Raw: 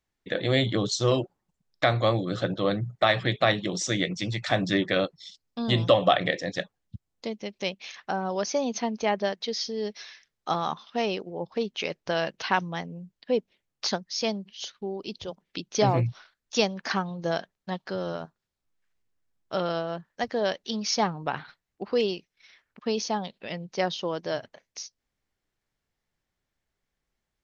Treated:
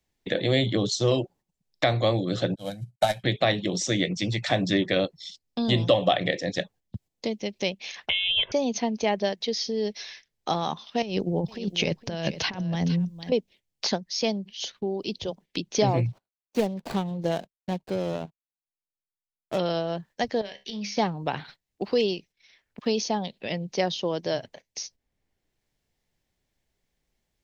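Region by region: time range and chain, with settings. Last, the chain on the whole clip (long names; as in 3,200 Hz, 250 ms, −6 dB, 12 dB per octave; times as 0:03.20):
0:02.55–0:03.24: variable-slope delta modulation 64 kbit/s + comb filter 1.3 ms, depth 81% + expander for the loud parts 2.5 to 1, over −36 dBFS
0:08.09–0:08.52: voice inversion scrambler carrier 3,700 Hz + comb filter 1.9 ms, depth 67% + multiband upward and downward compressor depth 70%
0:11.02–0:13.32: bass and treble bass +12 dB, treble +3 dB + compressor whose output falls as the input rises −29 dBFS, ratio −0.5 + single-tap delay 461 ms −15 dB
0:16.06–0:19.59: running median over 25 samples + noise gate −53 dBFS, range −29 dB + high-shelf EQ 4,500 Hz −6 dB
0:20.41–0:20.97: parametric band 2,200 Hz +10 dB 0.93 octaves + downward compressor 10 to 1, threshold −31 dBFS + tuned comb filter 68 Hz, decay 0.27 s, mix 70%
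whole clip: noise gate −51 dBFS, range −9 dB; parametric band 1,300 Hz −8.5 dB 0.78 octaves; multiband upward and downward compressor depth 40%; level +2.5 dB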